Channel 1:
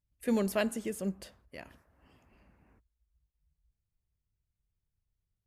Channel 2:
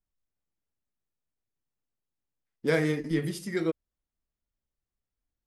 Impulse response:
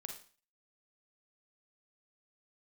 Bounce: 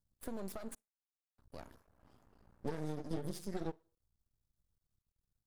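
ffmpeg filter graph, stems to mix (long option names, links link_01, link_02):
-filter_complex "[0:a]alimiter=level_in=2dB:limit=-24dB:level=0:latency=1:release=235,volume=-2dB,acompressor=threshold=-37dB:ratio=6,volume=1.5dB,asplit=3[link_01][link_02][link_03];[link_01]atrim=end=0.75,asetpts=PTS-STARTPTS,afade=type=out:start_time=0.746:duration=0.004:curve=hsin[link_04];[link_02]atrim=start=0.75:end=1.38,asetpts=PTS-STARTPTS,volume=0[link_05];[link_03]atrim=start=1.38,asetpts=PTS-STARTPTS,afade=type=in:duration=0.004:curve=hsin[link_06];[link_04][link_05][link_06]concat=n=3:v=0:a=1,asplit=2[link_07][link_08];[link_08]volume=-23dB[link_09];[1:a]acompressor=threshold=-27dB:ratio=6,flanger=delay=4.3:depth=1.2:regen=80:speed=1.9:shape=triangular,volume=0dB,asplit=2[link_10][link_11];[link_11]volume=-16dB[link_12];[2:a]atrim=start_sample=2205[link_13];[link_09][link_12]amix=inputs=2:normalize=0[link_14];[link_14][link_13]afir=irnorm=-1:irlink=0[link_15];[link_07][link_10][link_15]amix=inputs=3:normalize=0,asuperstop=centerf=2300:order=4:qfactor=1.2,acrossover=split=380[link_16][link_17];[link_17]acompressor=threshold=-39dB:ratio=4[link_18];[link_16][link_18]amix=inputs=2:normalize=0,aeval=exprs='max(val(0),0)':channel_layout=same"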